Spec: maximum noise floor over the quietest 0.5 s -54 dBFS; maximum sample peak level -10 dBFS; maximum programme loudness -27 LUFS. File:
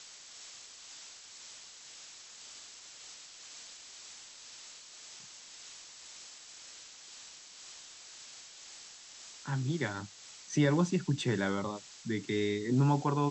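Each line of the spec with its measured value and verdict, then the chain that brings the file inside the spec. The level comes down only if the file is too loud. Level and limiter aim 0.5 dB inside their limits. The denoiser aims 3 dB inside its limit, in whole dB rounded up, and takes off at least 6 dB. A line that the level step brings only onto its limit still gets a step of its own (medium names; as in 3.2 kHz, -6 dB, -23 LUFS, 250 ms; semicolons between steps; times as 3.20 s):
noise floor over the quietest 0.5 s -51 dBFS: fail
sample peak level -16.5 dBFS: pass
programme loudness -32.5 LUFS: pass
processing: noise reduction 6 dB, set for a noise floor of -51 dBFS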